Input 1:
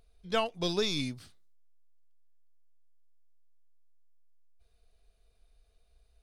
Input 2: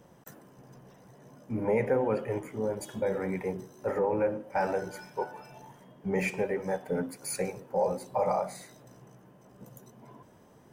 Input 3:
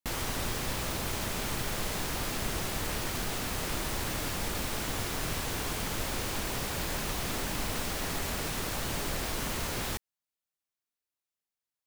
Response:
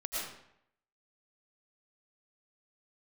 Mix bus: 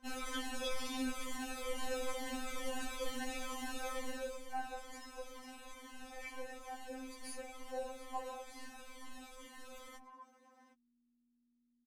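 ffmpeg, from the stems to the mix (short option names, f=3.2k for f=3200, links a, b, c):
-filter_complex "[0:a]volume=-10dB[a];[1:a]acompressor=threshold=-38dB:ratio=6,bandpass=f=2k:t=q:w=0.58:csg=0,equalizer=f=2.7k:t=o:w=0.99:g=-5.5,volume=2.5dB[b];[2:a]lowpass=9.5k,equalizer=f=4.8k:t=o:w=0.52:g=-6.5,asplit=2[c][d];[d]adelay=4.5,afreqshift=-2.2[e];[c][e]amix=inputs=2:normalize=1,volume=-2.5dB,afade=t=out:st=3.89:d=0.56:silence=0.298538[f];[a][b][f]amix=inputs=3:normalize=0,aeval=exprs='val(0)+0.00112*(sin(2*PI*60*n/s)+sin(2*PI*2*60*n/s)/2+sin(2*PI*3*60*n/s)/3+sin(2*PI*4*60*n/s)/4+sin(2*PI*5*60*n/s)/5)':c=same,afftfilt=real='re*3.46*eq(mod(b,12),0)':imag='im*3.46*eq(mod(b,12),0)':win_size=2048:overlap=0.75"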